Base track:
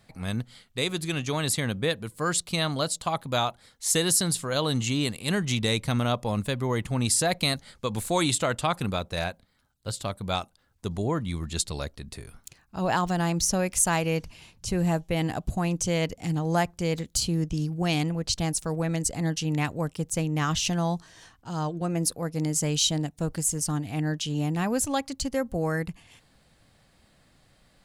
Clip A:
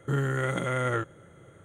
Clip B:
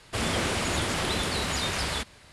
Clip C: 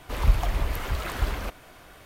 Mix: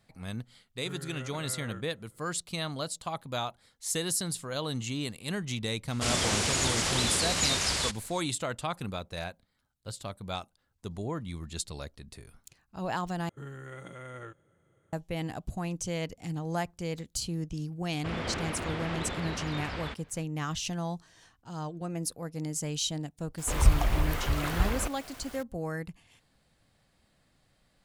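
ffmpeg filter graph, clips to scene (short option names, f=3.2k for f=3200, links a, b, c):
-filter_complex "[1:a]asplit=2[a][b];[2:a]asplit=2[c][d];[0:a]volume=-7.5dB[e];[c]equalizer=f=6.5k:w=0.84:g=10.5[f];[d]lowpass=2.8k[g];[3:a]acrusher=bits=7:mix=0:aa=0.000001[h];[e]asplit=2[i][j];[i]atrim=end=13.294[k];[b]atrim=end=1.64,asetpts=PTS-STARTPTS,volume=-16dB[l];[j]atrim=start=14.926[m];[a]atrim=end=1.64,asetpts=PTS-STARTPTS,volume=-16dB,afade=t=in:d=0.004:c=hsin,afade=t=out:st=1.636:d=0.004:c=hsin,adelay=770[n];[f]atrim=end=2.32,asetpts=PTS-STARTPTS,volume=-3.5dB,afade=t=in:d=0.004:c=hsin,afade=t=out:st=2.316:d=0.004:c=hsin,adelay=5880[o];[g]atrim=end=2.32,asetpts=PTS-STARTPTS,volume=-6.5dB,afade=t=in:d=0.004:c=hsin,afade=t=out:st=2.316:d=0.004:c=hsin,adelay=17910[p];[h]atrim=end=2.05,asetpts=PTS-STARTPTS,volume=-0.5dB,afade=t=in:d=0.004:c=hsin,afade=t=out:st=2.046:d=0.004:c=hsin,adelay=23380[q];[k][l]acrossfade=d=0.004:c1=hsin:c2=hsin[r];[r][m]acrossfade=d=0.004:c1=hsin:c2=hsin[s];[s][n][o][p][q]amix=inputs=5:normalize=0"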